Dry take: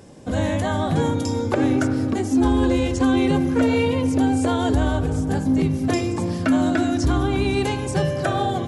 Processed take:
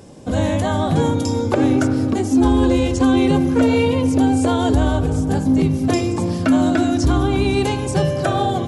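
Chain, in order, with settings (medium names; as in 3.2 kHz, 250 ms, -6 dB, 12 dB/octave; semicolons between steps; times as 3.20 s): peaking EQ 1.8 kHz -4 dB 0.64 oct; trim +3.5 dB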